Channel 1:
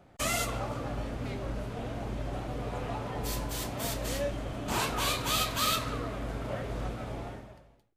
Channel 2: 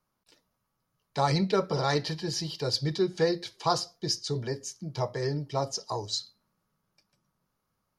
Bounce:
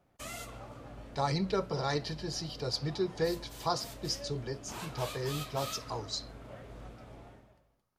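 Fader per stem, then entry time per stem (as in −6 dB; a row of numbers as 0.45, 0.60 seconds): −12.5, −5.5 decibels; 0.00, 0.00 seconds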